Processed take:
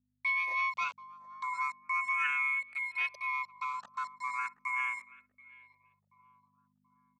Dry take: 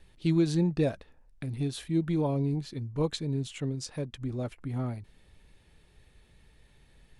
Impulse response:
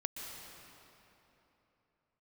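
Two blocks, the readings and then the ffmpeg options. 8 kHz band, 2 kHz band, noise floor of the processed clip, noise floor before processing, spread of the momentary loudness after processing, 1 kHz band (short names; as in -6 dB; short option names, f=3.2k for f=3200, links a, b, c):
-11.0 dB, +18.5 dB, -79 dBFS, -61 dBFS, 10 LU, +11.5 dB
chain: -filter_complex "[0:a]afftfilt=real='real(if(lt(b,272),68*(eq(floor(b/68),0)*3+eq(floor(b/68),1)*0+eq(floor(b/68),2)*1+eq(floor(b/68),3)*2)+mod(b,68),b),0)':imag='imag(if(lt(b,272),68*(eq(floor(b/68),0)*3+eq(floor(b/68),1)*0+eq(floor(b/68),2)*1+eq(floor(b/68),3)*2)+mod(b,68),b),0)':win_size=2048:overlap=0.75,acrossover=split=5100[a][b];[b]acompressor=threshold=-52dB:ratio=4:attack=1:release=60[c];[a][c]amix=inputs=2:normalize=0,anlmdn=3.98,aecho=1:1:3.1:0.78,asplit=2[d][e];[e]acompressor=threshold=-33dB:ratio=10,volume=2.5dB[f];[d][f]amix=inputs=2:normalize=0,aeval=exprs='val(0)*gte(abs(val(0)),0.02)':c=same,aeval=exprs='val(0)*sin(2*PI*580*n/s)':c=same,aeval=exprs='val(0)+0.00251*(sin(2*PI*50*n/s)+sin(2*PI*2*50*n/s)/2+sin(2*PI*3*50*n/s)/3+sin(2*PI*4*50*n/s)/4+sin(2*PI*5*50*n/s)/5)':c=same,asoftclip=type=tanh:threshold=-15.5dB,highpass=290,equalizer=f=300:t=q:w=4:g=-3,equalizer=f=1.8k:t=q:w=4:g=8,equalizer=f=5.1k:t=q:w=4:g=-9,lowpass=f=8k:w=0.5412,lowpass=f=8k:w=1.3066,asplit=2[g][h];[h]adelay=731,lowpass=f=1.1k:p=1,volume=-15.5dB,asplit=2[i][j];[j]adelay=731,lowpass=f=1.1k:p=1,volume=0.46,asplit=2[k][l];[l]adelay=731,lowpass=f=1.1k:p=1,volume=0.46,asplit=2[m][n];[n]adelay=731,lowpass=f=1.1k:p=1,volume=0.46[o];[i][k][m][o]amix=inputs=4:normalize=0[p];[g][p]amix=inputs=2:normalize=0,asplit=2[q][r];[r]afreqshift=0.37[s];[q][s]amix=inputs=2:normalize=1,volume=-4.5dB"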